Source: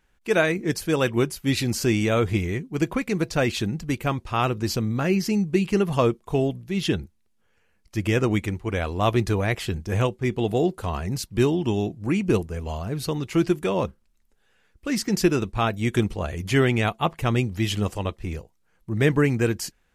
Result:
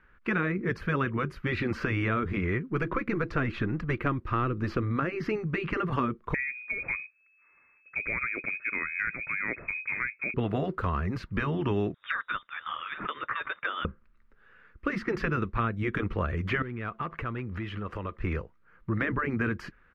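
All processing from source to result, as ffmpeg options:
-filter_complex "[0:a]asettb=1/sr,asplit=3[a][b][c];[a]atrim=end=2.714[d];[b]atrim=start=2.71:end=4.83,asetpts=PTS-STARTPTS,afade=t=in:d=0.004:c=qsin,afade=t=out:st=2.116:d=0.004:c=qsin,aeval=exprs='if(lt(val(0),0),0.708*val(0),val(0))':c=same,equalizer=f=320:t=o:w=0.29:g=9[e];[c]atrim=start=4.826[f];[d][e]acrossfade=d=0.004:c1=hsin:c2=qsin[g];[g][f]acrossfade=d=0.004:c1=qsin:c2=hsin,asettb=1/sr,asplit=3[h][i][j];[h]atrim=end=6.344[k];[i]atrim=start=6.34:end=10.34,asetpts=PTS-STARTPTS,afade=t=in:d=0.004:c=qsin,afade=t=out:st=3.996:d=0.004:c=qsin,equalizer=f=1.6k:t=o:w=0.66:g=-9,lowpass=f=2.2k:t=q:w=0.5098,lowpass=f=2.2k:t=q:w=0.6013,lowpass=f=2.2k:t=q:w=0.9,lowpass=f=2.2k:t=q:w=2.563,afreqshift=-2600[l];[j]atrim=start=10.336[m];[k][l]acrossfade=d=0.004:c1=hsin:c2=qsin[n];[n][m]acrossfade=d=0.004:c1=qsin:c2=hsin,asettb=1/sr,asplit=3[o][p][q];[o]atrim=end=11.944[r];[p]atrim=start=11.94:end=13.85,asetpts=PTS-STARTPTS,afade=t=in:d=0.004:c=qsin,afade=t=out:st=1.906:d=0.004:c=qsin,highpass=f=410:w=0.5412,highpass=f=410:w=1.3066,tiltshelf=f=1.2k:g=-8.5,lowpass=f=3.4k:t=q:w=0.5098,lowpass=f=3.4k:t=q:w=0.6013,lowpass=f=3.4k:t=q:w=0.9,lowpass=f=3.4k:t=q:w=2.563,afreqshift=-4000[s];[q]atrim=start=13.846[t];[r][s]acrossfade=d=0.004:c1=hsin:c2=qsin[u];[u][t]acrossfade=d=0.004:c1=qsin:c2=hsin,asettb=1/sr,asplit=3[v][w][x];[v]atrim=end=16.624[y];[w]atrim=start=16.62:end=18.18,asetpts=PTS-STARTPTS,afade=t=in:d=0.004:c=qsin,afade=t=out:st=1.556:d=0.004:c=qsin,asoftclip=type=hard:threshold=-16dB,acompressor=threshold=-34dB:ratio=8:attack=3.2:release=140:knee=1:detection=peak,bass=f=250:g=-3,treble=f=4k:g=-4[z];[x]atrim=start=18.176[aa];[y][z]acrossfade=d=0.004:c1=hsin:c2=qsin[ab];[ab][aa]acrossfade=d=0.004:c1=qsin:c2=hsin,afftfilt=real='re*lt(hypot(re,im),0.562)':imag='im*lt(hypot(re,im),0.562)':win_size=1024:overlap=0.75,firequalizer=gain_entry='entry(530,0);entry(770,-7);entry(1200,10);entry(3200,-9);entry(7600,-29)':delay=0.05:min_phase=1,acrossover=split=430|3700[ac][ad][ae];[ac]acompressor=threshold=-33dB:ratio=4[af];[ad]acompressor=threshold=-36dB:ratio=4[ag];[ae]acompressor=threshold=-60dB:ratio=4[ah];[af][ag][ah]amix=inputs=3:normalize=0,volume=4.5dB"

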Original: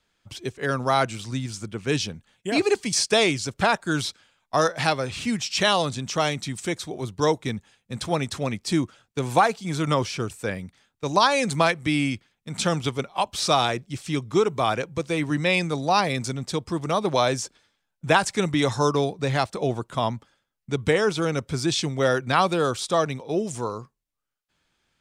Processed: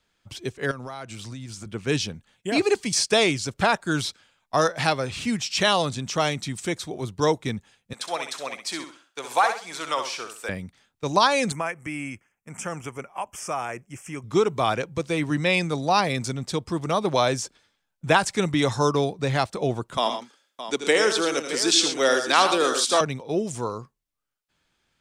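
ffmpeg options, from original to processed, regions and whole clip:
-filter_complex "[0:a]asettb=1/sr,asplit=3[a][b][c];[a]atrim=end=0.714[d];[b]atrim=start=0.71:end=1.66,asetpts=PTS-STARTPTS,afade=t=in:d=0.004:c=qsin,afade=t=out:st=0.946:d=0.004:c=qsin,highpass=41,acompressor=threshold=-33dB:ratio=6:attack=3.2:release=140:knee=1:detection=peak[e];[c]atrim=start=1.656[f];[d][e]acrossfade=d=0.004:c1=hsin:c2=qsin[g];[g][f]acrossfade=d=0.004:c1=qsin:c2=hsin,asettb=1/sr,asplit=3[h][i][j];[h]atrim=end=7.934[k];[i]atrim=start=7.93:end=10.49,asetpts=PTS-STARTPTS,afade=t=in:d=0.004:c=qsin,afade=t=out:st=2.556:d=0.004:c=qsin,highpass=690,aecho=1:1:65|130|195|260:0.422|0.122|0.0355|0.0103,atrim=end_sample=112896[l];[j]atrim=start=10.486[m];[k][l]acrossfade=d=0.004:c1=hsin:c2=qsin[n];[n][m]acrossfade=d=0.004:c1=qsin:c2=hsin,asettb=1/sr,asplit=3[o][p][q];[o]atrim=end=11.524[r];[p]atrim=start=11.52:end=14.24,asetpts=PTS-STARTPTS,afade=t=in:d=0.004:c=qsin,afade=t=out:st=2.716:d=0.004:c=qsin,lowshelf=f=470:g=-8.5,acompressor=threshold=-32dB:ratio=1.5:attack=3.2:release=140:knee=1:detection=peak,asuperstop=centerf=4000:order=4:qfactor=1.1[s];[q]atrim=start=14.236[t];[r][s]acrossfade=d=0.004:c1=hsin:c2=qsin[u];[u][t]acrossfade=d=0.004:c1=qsin:c2=hsin,asettb=1/sr,asplit=3[v][w][x];[v]atrim=end=19.974[y];[w]atrim=start=19.97:end=23.01,asetpts=PTS-STARTPTS,afade=t=in:d=0.004:c=qsin,afade=t=out:st=3.036:d=0.004:c=qsin,highpass=f=260:w=0.5412,highpass=f=260:w=1.3066,equalizer=f=6.8k:w=0.38:g=8.5,aecho=1:1:82|115|617:0.335|0.282|0.251,atrim=end_sample=134064[z];[x]atrim=start=23.006[aa];[y][z]acrossfade=d=0.004:c1=hsin:c2=qsin[ab];[ab][aa]acrossfade=d=0.004:c1=qsin:c2=hsin"

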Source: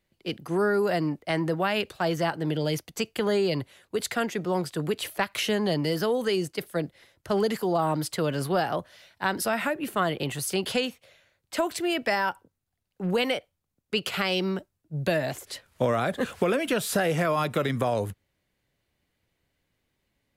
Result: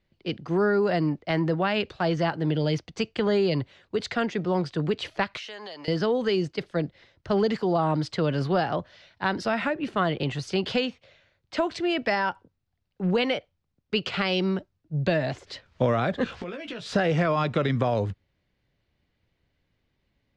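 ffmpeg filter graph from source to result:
-filter_complex "[0:a]asettb=1/sr,asplit=3[a][b][c];[a]atrim=end=5.374[d];[b]atrim=start=5.37:end=5.88,asetpts=PTS-STARTPTS,afade=t=in:d=0.004:c=qsin,afade=t=out:st=0.506:d=0.004:c=qsin,highpass=730,acompressor=threshold=-37dB:ratio=5:attack=3.2:release=140:knee=1:detection=peak,highshelf=f=7.9k:g=9[e];[c]atrim=start=5.876[f];[d][e]acrossfade=d=0.004:c1=hsin:c2=qsin[g];[g][f]acrossfade=d=0.004:c1=qsin:c2=hsin,asettb=1/sr,asplit=3[h][i][j];[h]atrim=end=16.244[k];[i]atrim=start=16.24:end=16.86,asetpts=PTS-STARTPTS,afade=t=in:d=0.004:c=qsin,afade=t=out:st=0.616:d=0.004:c=qsin,equalizer=f=3.5k:w=0.48:g=4,acompressor=threshold=-34dB:ratio=10:attack=3.2:release=140:knee=1:detection=peak,asplit=2[l][m];[m]adelay=17,volume=-6dB[n];[l][n]amix=inputs=2:normalize=0,atrim=end_sample=27342[o];[j]atrim=start=16.856[p];[k][o]acrossfade=d=0.004:c1=hsin:c2=qsin[q];[q][p]acrossfade=d=0.004:c1=qsin:c2=hsin,lowpass=f=5.4k:w=0.5412,lowpass=f=5.4k:w=1.3066,lowshelf=f=210:g=6"

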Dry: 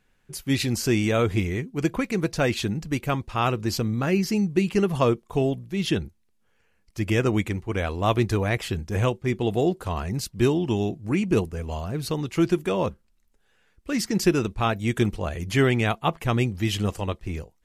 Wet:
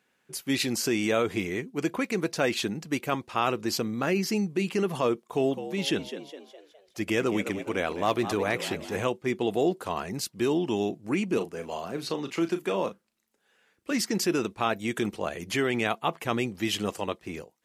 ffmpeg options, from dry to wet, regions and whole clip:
-filter_complex "[0:a]asettb=1/sr,asplit=3[a][b][c];[a]atrim=end=5.264[d];[b]atrim=start=5.26:end=9.03,asetpts=PTS-STARTPTS,afade=t=in:d=0.004:c=qsin,afade=t=out:st=3.766:d=0.004:c=qsin,asplit=6[e][f][g][h][i][j];[f]adelay=207,afreqshift=75,volume=-13dB[k];[g]adelay=414,afreqshift=150,volume=-19.7dB[l];[h]adelay=621,afreqshift=225,volume=-26.5dB[m];[i]adelay=828,afreqshift=300,volume=-33.2dB[n];[j]adelay=1035,afreqshift=375,volume=-40dB[o];[e][k][l][m][n][o]amix=inputs=6:normalize=0,atrim=end_sample=166257,asoftclip=type=hard:threshold=-12.5dB[p];[c]atrim=start=9.026[q];[d][p]acrossfade=d=0.004:c1=hsin:c2=qsin[r];[r][q]acrossfade=d=0.004:c1=qsin:c2=hsin,asettb=1/sr,asplit=3[s][t][u];[s]atrim=end=11.374[v];[t]atrim=start=11.37:end=13.91,asetpts=PTS-STARTPTS,afade=t=in:d=0.004:c=qsin,afade=t=out:st=2.536:d=0.004:c=qsin,acrossover=split=150|6900[w][x][y];[w]acompressor=threshold=-44dB:ratio=4[z];[x]acompressor=threshold=-23dB:ratio=4[aa];[y]acompressor=threshold=-55dB:ratio=4[ab];[z][aa][ab]amix=inputs=3:normalize=0,asplit=2[ac][ad];[ad]adelay=36,volume=-10dB[ae];[ac][ae]amix=inputs=2:normalize=0,atrim=end_sample=112014[af];[u]atrim=start=13.906[ag];[v][af]acrossfade=d=0.004:c1=hsin:c2=qsin[ah];[ah][ag]acrossfade=d=0.004:c1=qsin:c2=hsin,alimiter=limit=-15dB:level=0:latency=1:release=21,highpass=240"

